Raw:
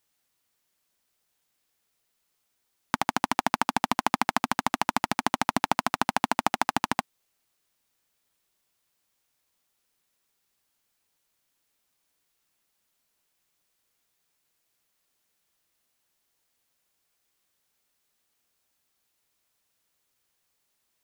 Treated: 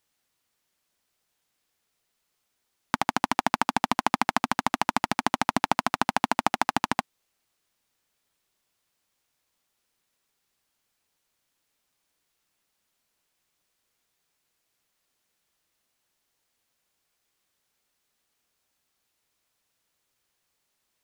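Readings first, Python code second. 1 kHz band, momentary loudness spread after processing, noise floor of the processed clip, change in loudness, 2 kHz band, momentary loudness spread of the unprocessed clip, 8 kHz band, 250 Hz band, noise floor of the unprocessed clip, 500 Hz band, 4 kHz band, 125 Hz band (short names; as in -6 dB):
+1.0 dB, 3 LU, -78 dBFS, +1.0 dB, +1.0 dB, 3 LU, -0.5 dB, +1.0 dB, -76 dBFS, +1.0 dB, +0.5 dB, +1.0 dB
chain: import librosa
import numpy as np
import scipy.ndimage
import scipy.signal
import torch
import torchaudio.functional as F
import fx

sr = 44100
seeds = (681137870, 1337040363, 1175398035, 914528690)

y = fx.high_shelf(x, sr, hz=10000.0, db=-5.5)
y = F.gain(torch.from_numpy(y), 1.0).numpy()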